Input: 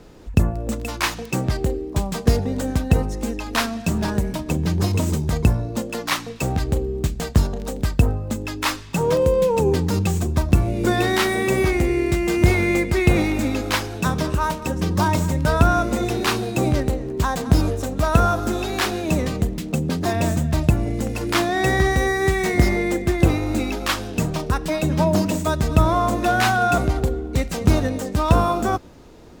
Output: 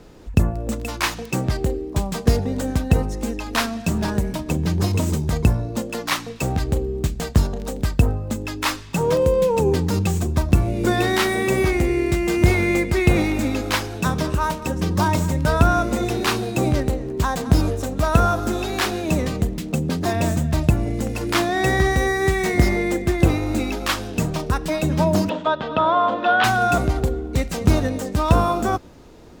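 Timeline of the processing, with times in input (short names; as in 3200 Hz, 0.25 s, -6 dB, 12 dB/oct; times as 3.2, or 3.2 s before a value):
25.29–26.44 speaker cabinet 290–3500 Hz, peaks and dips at 360 Hz -6 dB, 540 Hz +5 dB, 930 Hz +5 dB, 1400 Hz +5 dB, 2200 Hz -6 dB, 3300 Hz +8 dB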